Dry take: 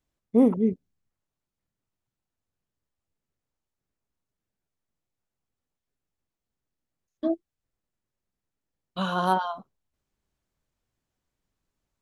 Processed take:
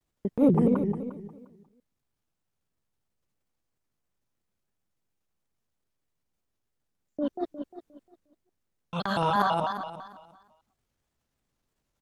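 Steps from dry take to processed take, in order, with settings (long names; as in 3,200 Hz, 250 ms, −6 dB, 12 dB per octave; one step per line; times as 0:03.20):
reversed piece by piece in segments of 124 ms
transient designer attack −7 dB, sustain +7 dB
on a send: repeating echo 177 ms, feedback 44%, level −4 dB
on the sum: pitch modulation by a square or saw wave square 3 Hz, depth 160 cents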